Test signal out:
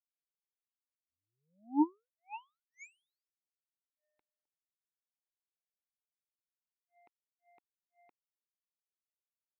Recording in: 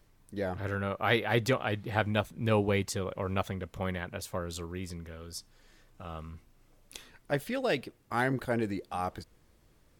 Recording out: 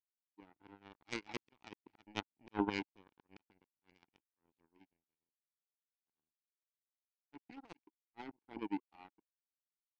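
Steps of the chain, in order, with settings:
formant filter u
volume swells 118 ms
power curve on the samples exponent 3
level +12.5 dB

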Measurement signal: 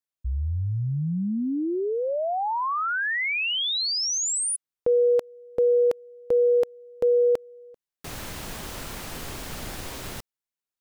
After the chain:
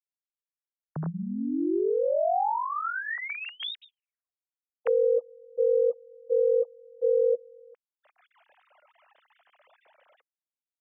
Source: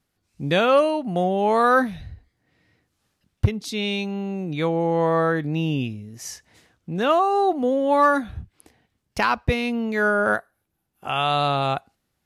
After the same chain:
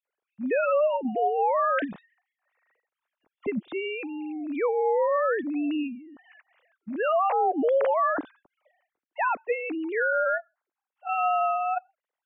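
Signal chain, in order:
three sine waves on the formant tracks
brickwall limiter −16 dBFS
high-frequency loss of the air 240 metres

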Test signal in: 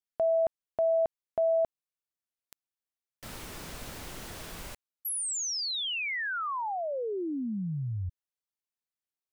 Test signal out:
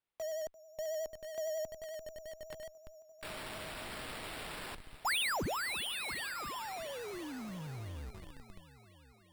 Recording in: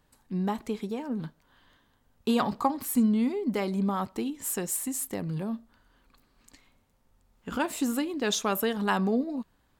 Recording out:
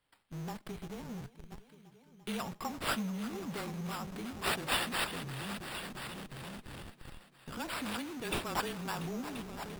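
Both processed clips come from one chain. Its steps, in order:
first-order pre-emphasis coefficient 0.8
echo machine with several playback heads 343 ms, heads all three, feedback 50%, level −16 dB
frequency shifter −25 Hz
in parallel at −5 dB: comparator with hysteresis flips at −45.5 dBFS
on the sum: decimation without filtering 7×
pitch vibrato 11 Hz 48 cents
level −2.5 dB

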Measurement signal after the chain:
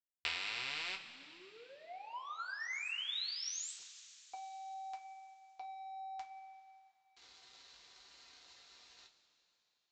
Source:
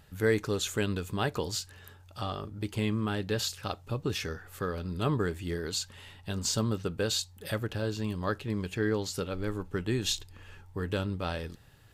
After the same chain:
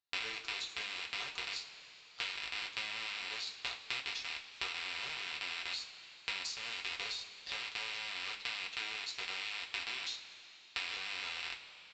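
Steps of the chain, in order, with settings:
loose part that buzzes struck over −39 dBFS, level −18 dBFS
high-pass filter 1,400 Hz 6 dB per octave
parametric band 4,100 Hz +12.5 dB 0.52 octaves
brickwall limiter −18.5 dBFS
downward compressor 10 to 1, threshold −32 dBFS
power curve on the samples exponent 2
coupled-rooms reverb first 0.21 s, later 3.5 s, from −19 dB, DRR −2 dB
downsampling to 16,000 Hz
level +3 dB

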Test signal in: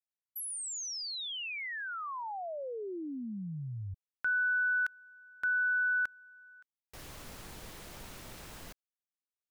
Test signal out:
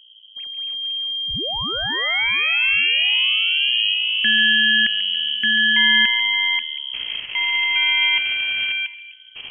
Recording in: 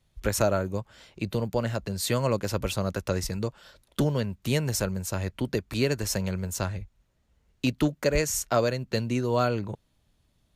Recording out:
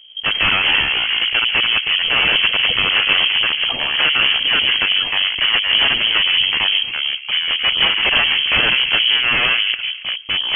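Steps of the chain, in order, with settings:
gain on one half-wave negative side −12 dB
graphic EQ with 10 bands 250 Hz +7 dB, 500 Hz +8 dB, 1,000 Hz +7 dB, 2,000 Hz −6 dB
in parallel at −6.5 dB: sine wavefolder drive 19 dB, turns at −4.5 dBFS
on the sum: mains hum 60 Hz, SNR 26 dB
on a send: delay with a band-pass on its return 140 ms, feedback 48%, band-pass 670 Hz, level −7.5 dB
on the sum: delay with pitch and tempo change per echo 97 ms, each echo −5 semitones, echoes 2
voice inversion scrambler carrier 3,200 Hz
level −3.5 dB

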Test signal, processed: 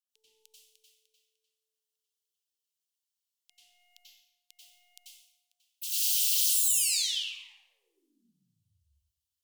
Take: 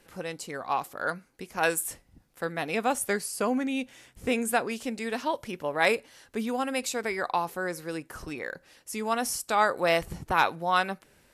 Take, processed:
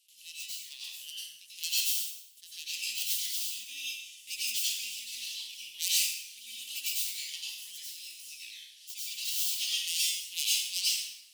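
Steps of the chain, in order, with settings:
stylus tracing distortion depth 0.4 ms
elliptic high-pass filter 2,900 Hz, stop band 50 dB
dense smooth reverb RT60 0.93 s, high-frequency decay 0.75×, pre-delay 80 ms, DRR −8 dB
level −1.5 dB

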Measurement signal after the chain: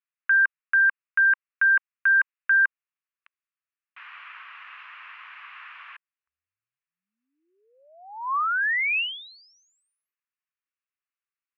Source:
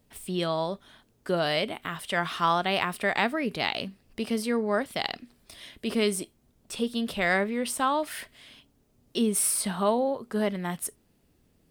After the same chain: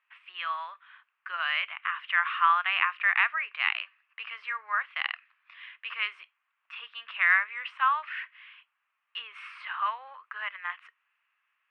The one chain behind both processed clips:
elliptic band-pass filter 1,100–2,700 Hz, stop band 80 dB
level +5.5 dB

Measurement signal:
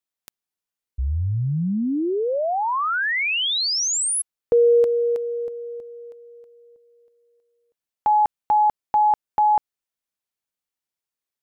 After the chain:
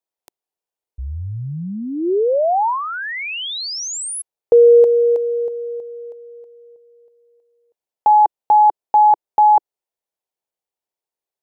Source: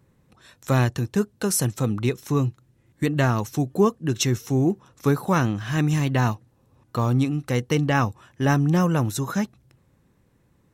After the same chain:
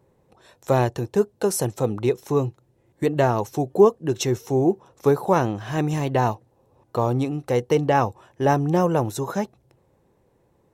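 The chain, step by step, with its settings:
flat-topped bell 580 Hz +10 dB
level −3.5 dB

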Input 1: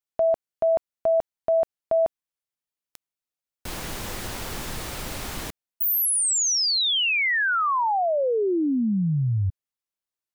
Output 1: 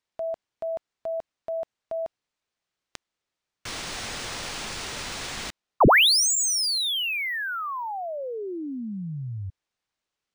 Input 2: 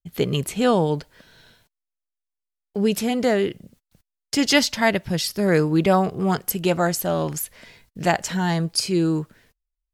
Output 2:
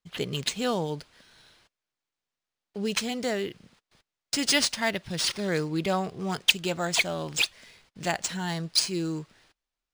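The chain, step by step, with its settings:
first-order pre-emphasis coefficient 0.8
linearly interpolated sample-rate reduction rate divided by 3×
level +4 dB

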